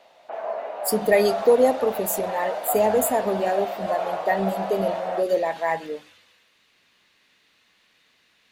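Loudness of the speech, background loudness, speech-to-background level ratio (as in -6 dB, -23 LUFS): -23.5 LUFS, -29.5 LUFS, 6.0 dB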